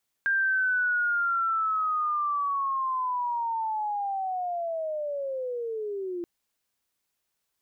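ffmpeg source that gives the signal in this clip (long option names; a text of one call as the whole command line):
ffmpeg -f lavfi -i "aevalsrc='pow(10,(-21.5-8.5*t/5.98)/20)*sin(2*PI*(1600*t-1260*t*t/(2*5.98)))':duration=5.98:sample_rate=44100" out.wav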